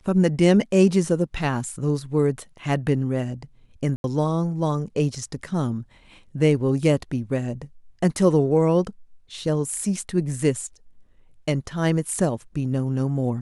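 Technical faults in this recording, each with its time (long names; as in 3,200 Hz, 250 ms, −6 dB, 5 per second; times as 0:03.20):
0:03.96–0:04.04: drop-out 81 ms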